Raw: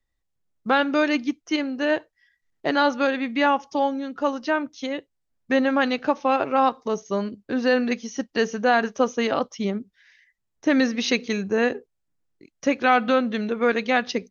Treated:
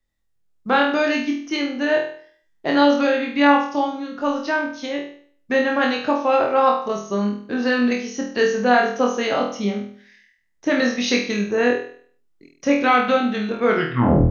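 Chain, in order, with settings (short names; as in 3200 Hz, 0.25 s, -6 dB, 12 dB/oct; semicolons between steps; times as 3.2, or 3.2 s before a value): tape stop at the end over 0.66 s; on a send: flutter echo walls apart 4.2 m, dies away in 0.52 s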